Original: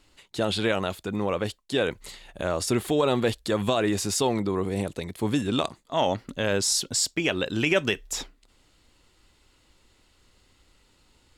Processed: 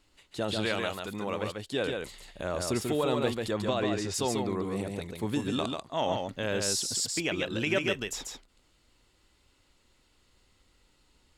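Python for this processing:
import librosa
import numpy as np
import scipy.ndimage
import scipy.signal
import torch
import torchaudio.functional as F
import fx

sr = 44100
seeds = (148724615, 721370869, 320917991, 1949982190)

y = fx.tilt_shelf(x, sr, db=-3.5, hz=830.0, at=(0.63, 1.43))
y = fx.lowpass(y, sr, hz=5600.0, slope=12, at=(3.51, 4.14))
y = y + 10.0 ** (-4.0 / 20.0) * np.pad(y, (int(141 * sr / 1000.0), 0))[:len(y)]
y = F.gain(torch.from_numpy(y), -6.0).numpy()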